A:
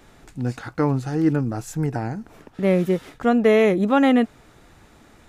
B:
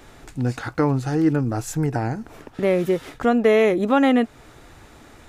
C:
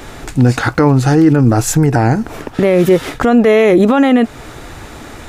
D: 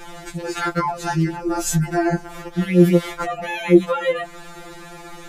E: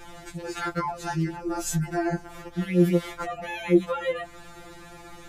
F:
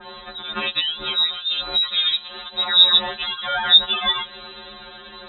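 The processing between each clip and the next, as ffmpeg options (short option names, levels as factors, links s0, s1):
-filter_complex "[0:a]equalizer=f=190:t=o:w=0.32:g=-8,asplit=2[s0][s1];[s1]acompressor=threshold=0.0562:ratio=6,volume=1.33[s2];[s0][s2]amix=inputs=2:normalize=0,volume=0.75"
-af "alimiter=level_in=6.31:limit=0.891:release=50:level=0:latency=1,volume=0.891"
-af "afftfilt=real='re*2.83*eq(mod(b,8),0)':imag='im*2.83*eq(mod(b,8),0)':win_size=2048:overlap=0.75,volume=0.668"
-af "aeval=exprs='val(0)+0.00316*(sin(2*PI*60*n/s)+sin(2*PI*2*60*n/s)/2+sin(2*PI*3*60*n/s)/3+sin(2*PI*4*60*n/s)/4+sin(2*PI*5*60*n/s)/5)':c=same,volume=0.447"
-af "aexciter=amount=9.7:drive=8.1:freq=2700,lowpass=f=3400:t=q:w=0.5098,lowpass=f=3400:t=q:w=0.6013,lowpass=f=3400:t=q:w=0.9,lowpass=f=3400:t=q:w=2.563,afreqshift=-4000,adynamicequalizer=threshold=0.0178:dfrequency=2300:dqfactor=0.7:tfrequency=2300:tqfactor=0.7:attack=5:release=100:ratio=0.375:range=3.5:mode=boostabove:tftype=highshelf"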